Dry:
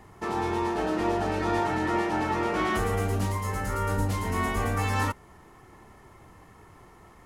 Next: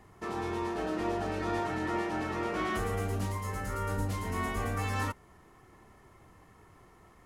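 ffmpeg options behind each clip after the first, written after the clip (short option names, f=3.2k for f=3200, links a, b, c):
-af "bandreject=f=870:w=14,volume=-5.5dB"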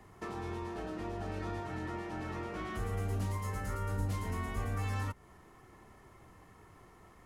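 -filter_complex "[0:a]acrossover=split=160[a][b];[b]acompressor=threshold=-39dB:ratio=6[c];[a][c]amix=inputs=2:normalize=0"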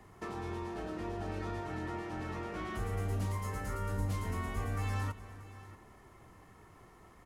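-af "aecho=1:1:306|631:0.119|0.15"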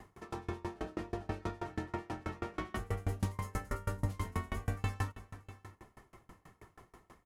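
-af "aeval=exprs='val(0)*pow(10,-29*if(lt(mod(6.2*n/s,1),2*abs(6.2)/1000),1-mod(6.2*n/s,1)/(2*abs(6.2)/1000),(mod(6.2*n/s,1)-2*abs(6.2)/1000)/(1-2*abs(6.2)/1000))/20)':c=same,volume=6.5dB"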